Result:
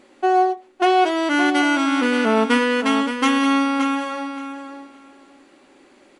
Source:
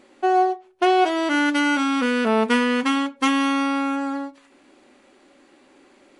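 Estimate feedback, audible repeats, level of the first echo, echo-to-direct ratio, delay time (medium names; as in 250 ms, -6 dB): 17%, 2, -9.0 dB, -9.0 dB, 571 ms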